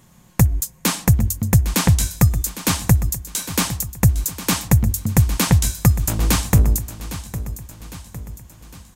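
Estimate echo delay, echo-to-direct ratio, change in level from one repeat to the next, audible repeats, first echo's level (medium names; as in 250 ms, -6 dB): 807 ms, -12.5 dB, -6.0 dB, 4, -13.5 dB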